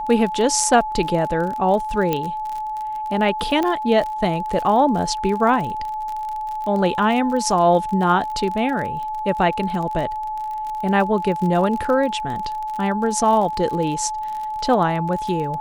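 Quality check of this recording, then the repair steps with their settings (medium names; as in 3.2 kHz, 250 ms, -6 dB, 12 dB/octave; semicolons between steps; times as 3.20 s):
crackle 38 per s -26 dBFS
whine 860 Hz -24 dBFS
2.13 s: pop -8 dBFS
3.63 s: pop -10 dBFS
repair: de-click; band-stop 860 Hz, Q 30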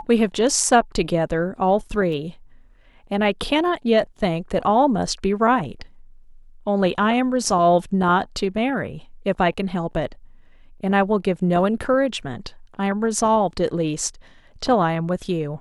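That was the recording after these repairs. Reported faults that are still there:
2.13 s: pop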